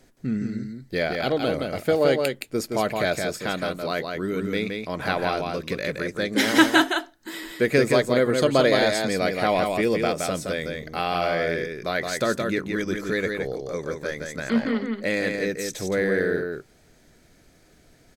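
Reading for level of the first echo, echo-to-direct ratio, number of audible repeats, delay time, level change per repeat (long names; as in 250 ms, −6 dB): −4.5 dB, −4.5 dB, 1, 169 ms, repeats not evenly spaced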